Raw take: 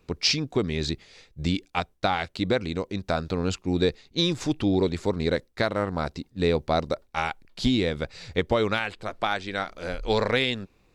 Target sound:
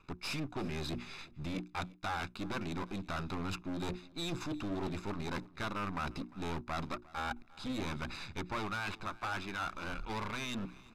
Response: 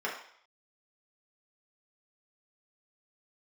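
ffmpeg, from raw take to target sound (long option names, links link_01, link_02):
-filter_complex "[0:a]aeval=exprs='if(lt(val(0),0),0.251*val(0),val(0))':channel_layout=same,equalizer=frequency=470:width=4.8:gain=-13,bandreject=frequency=60:width_type=h:width=6,bandreject=frequency=120:width_type=h:width=6,bandreject=frequency=180:width_type=h:width=6,bandreject=frequency=240:width_type=h:width=6,bandreject=frequency=300:width_type=h:width=6,bandreject=frequency=360:width_type=h:width=6,aecho=1:1:0.8:0.56,areverse,acompressor=threshold=-38dB:ratio=4,areverse,asplit=2[link_01][link_02];[link_02]highpass=frequency=720:poles=1,volume=11dB,asoftclip=type=tanh:threshold=-24.5dB[link_03];[link_01][link_03]amix=inputs=2:normalize=0,lowpass=frequency=1200:poles=1,volume=-6dB,aeval=exprs='clip(val(0),-1,0.0075)':channel_layout=same,asplit=2[link_04][link_05];[link_05]aecho=0:1:351|702:0.0794|0.0135[link_06];[link_04][link_06]amix=inputs=2:normalize=0,aresample=32000,aresample=44100,volume=7.5dB"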